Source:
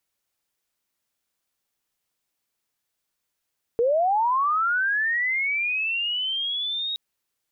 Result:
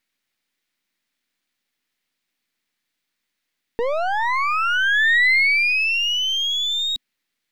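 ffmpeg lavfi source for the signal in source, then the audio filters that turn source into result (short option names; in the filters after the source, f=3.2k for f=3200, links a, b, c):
-f lavfi -i "aevalsrc='pow(10,(-17.5-8*t/3.17)/20)*sin(2*PI*(450*t+3350*t*t/(2*3.17)))':d=3.17:s=44100"
-af "aeval=exprs='if(lt(val(0),0),0.251*val(0),val(0))':c=same,equalizer=f=250:t=o:w=1:g=11,equalizer=f=2k:t=o:w=1:g=11,equalizer=f=4k:t=o:w=1:g=7"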